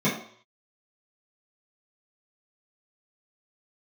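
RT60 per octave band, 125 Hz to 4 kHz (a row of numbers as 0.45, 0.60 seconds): 0.45, 0.45, 0.55, 0.60, 0.55, 0.60 seconds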